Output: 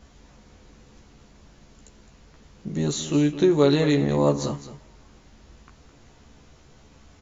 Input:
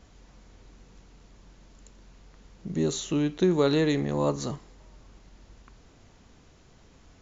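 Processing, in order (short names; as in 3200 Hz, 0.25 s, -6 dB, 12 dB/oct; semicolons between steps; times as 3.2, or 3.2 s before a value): doubler 14 ms -4 dB; echo 0.212 s -13 dB; gain +2 dB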